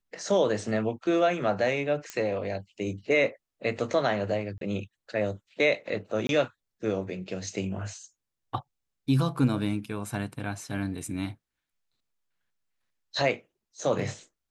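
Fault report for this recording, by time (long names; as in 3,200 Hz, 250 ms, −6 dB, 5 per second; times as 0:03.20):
0:02.10: click −18 dBFS
0:04.58–0:04.61: drop-out 32 ms
0:06.27–0:06.29: drop-out 22 ms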